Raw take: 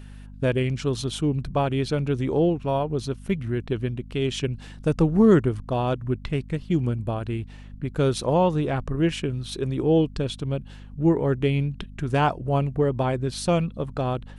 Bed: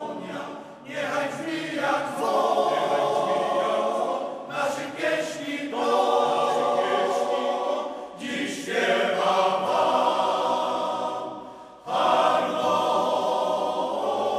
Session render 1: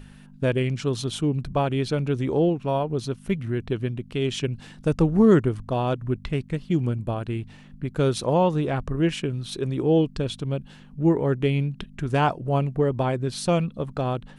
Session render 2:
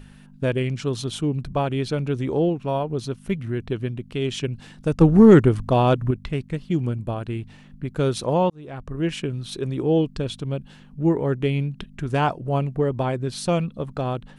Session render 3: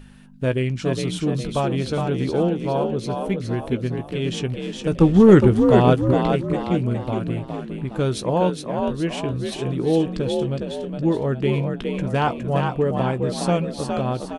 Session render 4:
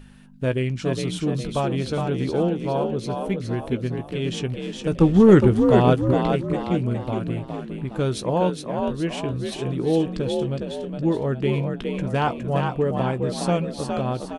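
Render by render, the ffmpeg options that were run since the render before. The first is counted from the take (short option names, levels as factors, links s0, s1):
-af "bandreject=f=50:t=h:w=4,bandreject=f=100:t=h:w=4"
-filter_complex "[0:a]asettb=1/sr,asplit=3[s0][s1][s2];[s0]atrim=end=5.014[s3];[s1]atrim=start=5.01:end=6.11,asetpts=PTS-STARTPTS,afade=t=in:d=0.004:c=qsin,afade=t=out:st=1.096:d=0.004:c=qsin,acontrast=79[s4];[s2]atrim=start=6.106[s5];[s3][s4]acrossfade=d=0.004:c1=hsin:c2=qsin[s6];[s6][s5]acrossfade=d=0.004:c1=qsin:c2=hsin,asplit=2[s7][s8];[s7]atrim=end=8.5,asetpts=PTS-STARTPTS,afade=t=out:st=8.496:d=0.004:c=hsin[s9];[s8]atrim=start=8.5,asetpts=PTS-STARTPTS,afade=t=in:d=0.69[s10];[s9][s10]concat=n=2:v=0:a=1"
-filter_complex "[0:a]asplit=2[s0][s1];[s1]adelay=16,volume=0.251[s2];[s0][s2]amix=inputs=2:normalize=0,asplit=6[s3][s4][s5][s6][s7][s8];[s4]adelay=413,afreqshift=48,volume=0.562[s9];[s5]adelay=826,afreqshift=96,volume=0.248[s10];[s6]adelay=1239,afreqshift=144,volume=0.108[s11];[s7]adelay=1652,afreqshift=192,volume=0.0479[s12];[s8]adelay=2065,afreqshift=240,volume=0.0211[s13];[s3][s9][s10][s11][s12][s13]amix=inputs=6:normalize=0"
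-af "volume=0.841"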